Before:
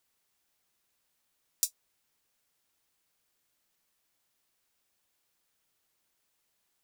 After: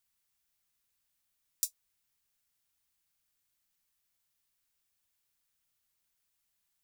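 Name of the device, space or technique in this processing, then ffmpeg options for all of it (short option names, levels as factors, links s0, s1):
smiley-face EQ: -af "lowshelf=f=130:g=6,equalizer=f=440:t=o:w=2.1:g=-8,highshelf=f=8900:g=4.5,volume=0.531"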